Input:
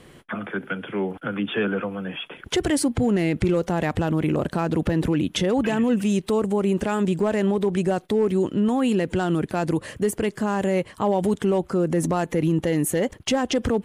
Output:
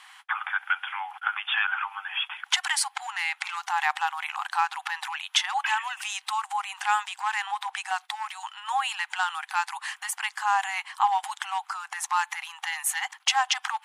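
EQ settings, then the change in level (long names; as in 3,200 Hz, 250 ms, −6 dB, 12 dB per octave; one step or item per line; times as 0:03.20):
linear-phase brick-wall high-pass 750 Hz
high-shelf EQ 11,000 Hz −11.5 dB
+5.5 dB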